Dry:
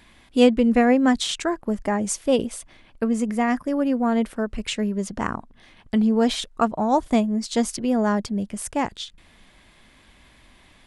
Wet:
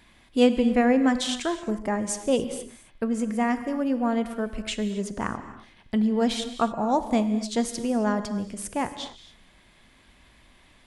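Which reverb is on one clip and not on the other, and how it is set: non-linear reverb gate 0.3 s flat, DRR 10 dB; gain -3.5 dB

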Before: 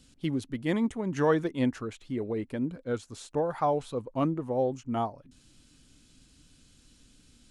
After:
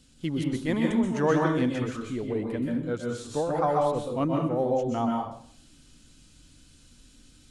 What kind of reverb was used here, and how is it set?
plate-style reverb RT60 0.55 s, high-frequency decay 0.95×, pre-delay 0.115 s, DRR -1 dB

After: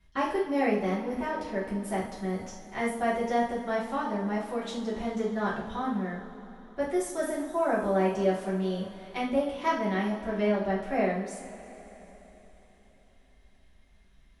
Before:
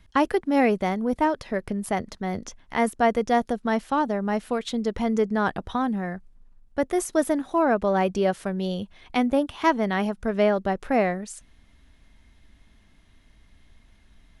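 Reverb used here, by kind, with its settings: two-slope reverb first 0.45 s, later 4 s, from -18 dB, DRR -9 dB; gain -14.5 dB

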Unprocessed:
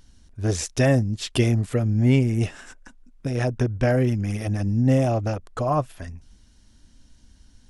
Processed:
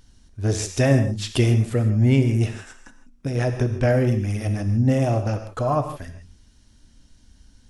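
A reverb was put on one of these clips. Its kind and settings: non-linear reverb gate 0.18 s flat, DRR 7 dB

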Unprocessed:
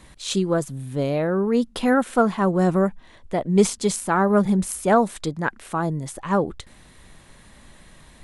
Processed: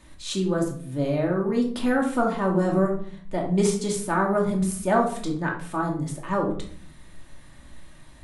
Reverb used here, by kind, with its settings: shoebox room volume 610 m³, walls furnished, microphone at 2.6 m; gain -6.5 dB

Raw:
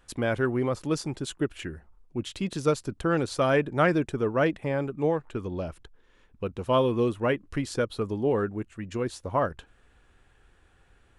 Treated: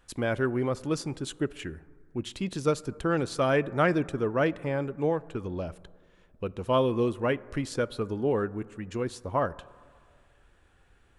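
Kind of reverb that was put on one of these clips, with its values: plate-style reverb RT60 2.1 s, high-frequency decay 0.25×, DRR 19.5 dB; gain -1.5 dB

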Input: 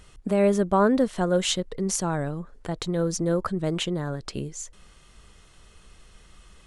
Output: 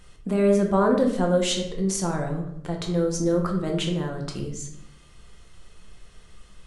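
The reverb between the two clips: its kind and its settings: shoebox room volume 170 m³, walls mixed, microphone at 0.85 m; gain -2.5 dB

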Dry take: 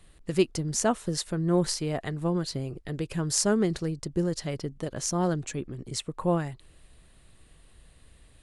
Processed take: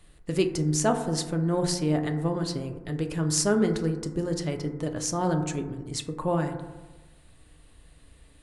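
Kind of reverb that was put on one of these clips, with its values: FDN reverb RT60 1.2 s, low-frequency decay 1×, high-frequency decay 0.25×, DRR 5 dB

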